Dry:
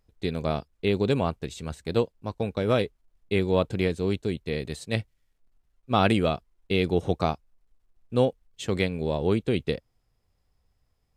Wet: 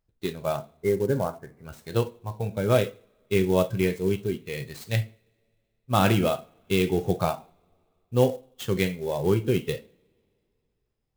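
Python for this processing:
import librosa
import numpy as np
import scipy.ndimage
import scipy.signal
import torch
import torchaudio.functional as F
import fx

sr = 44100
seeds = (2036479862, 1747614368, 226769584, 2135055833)

y = fx.cheby_ripple(x, sr, hz=2200.0, ripple_db=3, at=(0.56, 1.65))
y = fx.rev_double_slope(y, sr, seeds[0], early_s=0.47, late_s=2.8, knee_db=-26, drr_db=6.0)
y = fx.noise_reduce_blind(y, sr, reduce_db=9)
y = fx.clock_jitter(y, sr, seeds[1], jitter_ms=0.025)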